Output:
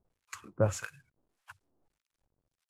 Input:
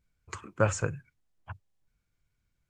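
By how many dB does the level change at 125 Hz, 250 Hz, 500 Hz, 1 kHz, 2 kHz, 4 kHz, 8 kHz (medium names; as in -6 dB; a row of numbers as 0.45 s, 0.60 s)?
-3.0 dB, -3.0 dB, -2.0 dB, -7.5 dB, -6.5 dB, -2.0 dB, -4.5 dB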